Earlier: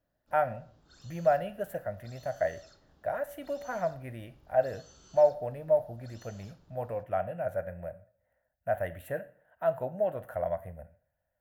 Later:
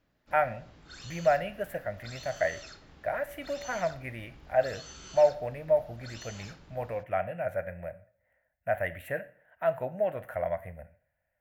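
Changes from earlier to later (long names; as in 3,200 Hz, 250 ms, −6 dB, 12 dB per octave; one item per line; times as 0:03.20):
background +9.0 dB
master: add parametric band 2,200 Hz +12 dB 0.76 octaves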